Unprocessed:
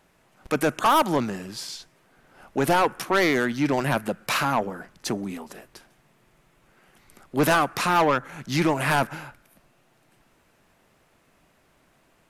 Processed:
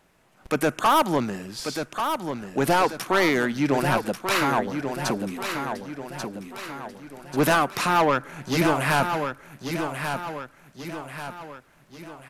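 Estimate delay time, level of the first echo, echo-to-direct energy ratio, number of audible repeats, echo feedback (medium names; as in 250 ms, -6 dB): 1138 ms, -7.0 dB, -6.0 dB, 5, 46%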